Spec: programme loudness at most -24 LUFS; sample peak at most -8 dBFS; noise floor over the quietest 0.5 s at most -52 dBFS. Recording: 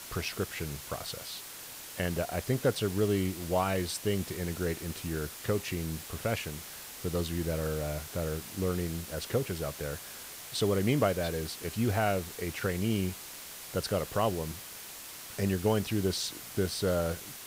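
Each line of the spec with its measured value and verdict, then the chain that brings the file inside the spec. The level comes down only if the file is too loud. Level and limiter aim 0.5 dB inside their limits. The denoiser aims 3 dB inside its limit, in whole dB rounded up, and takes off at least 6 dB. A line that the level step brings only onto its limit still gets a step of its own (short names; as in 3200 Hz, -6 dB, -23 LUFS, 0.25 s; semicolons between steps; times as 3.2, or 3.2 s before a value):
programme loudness -32.5 LUFS: OK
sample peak -14.0 dBFS: OK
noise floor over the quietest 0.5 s -45 dBFS: fail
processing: denoiser 10 dB, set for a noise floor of -45 dBFS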